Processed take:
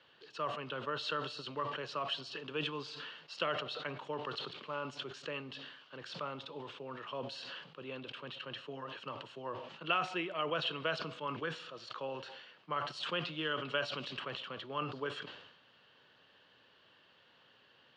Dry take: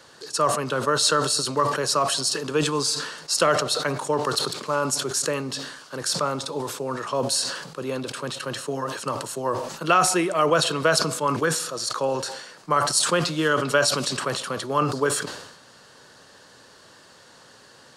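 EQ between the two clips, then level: high-pass 54 Hz; four-pole ladder low-pass 3.3 kHz, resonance 65%; -5.5 dB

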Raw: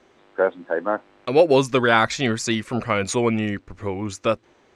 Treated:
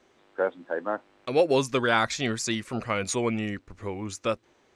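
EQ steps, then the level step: treble shelf 4.5 kHz +6 dB; -6.5 dB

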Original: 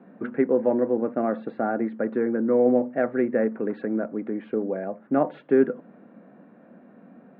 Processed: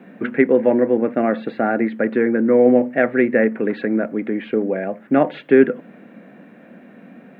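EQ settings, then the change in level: resonant high shelf 1.6 kHz +8.5 dB, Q 1.5; +7.0 dB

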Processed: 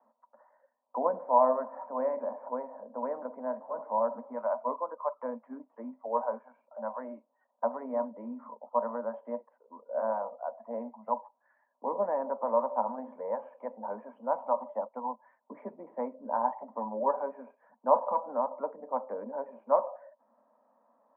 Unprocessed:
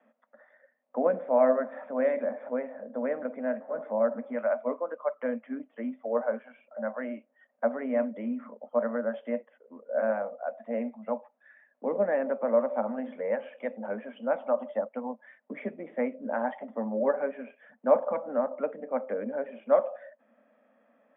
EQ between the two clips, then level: high-pass 150 Hz; resonant low-pass 970 Hz, resonance Q 12; -8.0 dB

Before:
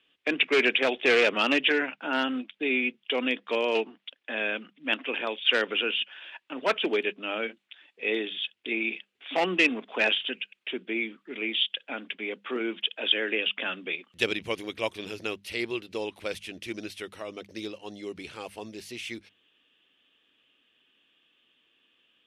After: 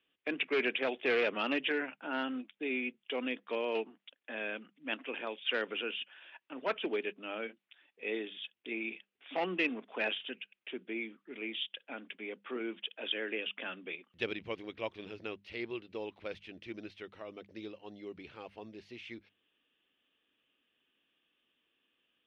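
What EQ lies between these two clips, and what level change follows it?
distance through air 240 m; -7.0 dB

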